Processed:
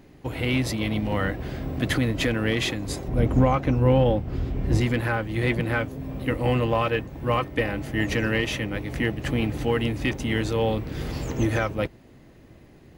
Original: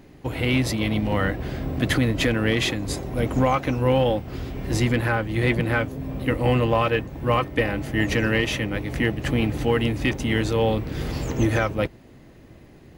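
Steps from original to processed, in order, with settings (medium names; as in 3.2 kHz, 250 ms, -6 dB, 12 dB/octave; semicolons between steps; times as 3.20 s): 3.08–4.81 s: tilt EQ -2 dB/octave; trim -2.5 dB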